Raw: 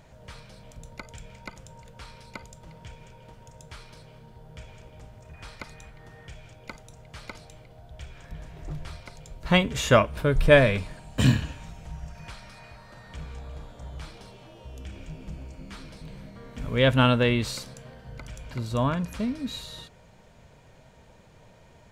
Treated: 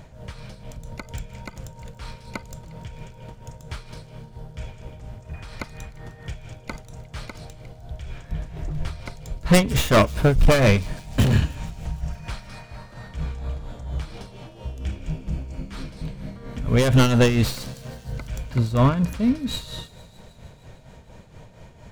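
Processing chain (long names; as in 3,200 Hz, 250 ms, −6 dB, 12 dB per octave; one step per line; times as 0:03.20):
stylus tracing distortion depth 0.18 ms
low-shelf EQ 280 Hz +6 dB
gain into a clipping stage and back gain 16.5 dB
amplitude tremolo 4.3 Hz, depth 61%
delay with a high-pass on its return 153 ms, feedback 76%, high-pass 4,400 Hz, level −17 dB
level +7 dB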